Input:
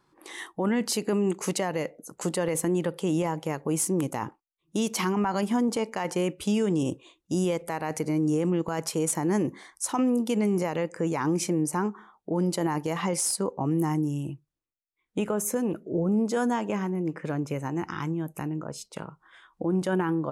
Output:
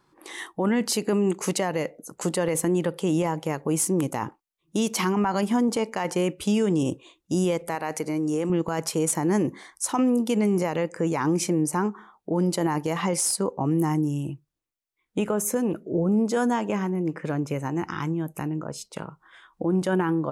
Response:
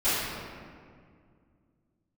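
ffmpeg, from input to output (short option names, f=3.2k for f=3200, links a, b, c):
-filter_complex "[0:a]asettb=1/sr,asplit=3[a][b][c];[a]atrim=end=7.754[d];[b]atrim=start=7.75:end=8.5,asetpts=PTS-STARTPTS,afade=t=in:d=0.004:c=qsin,afade=t=out:st=0.746:d=0.004:c=qsin,lowshelf=f=190:g=-11.5[e];[c]atrim=start=8.496[f];[d][e]acrossfade=d=0.004:c1=hsin:c2=qsin[g];[g][f]acrossfade=d=0.004:c1=qsin:c2=hsin,volume=2.5dB"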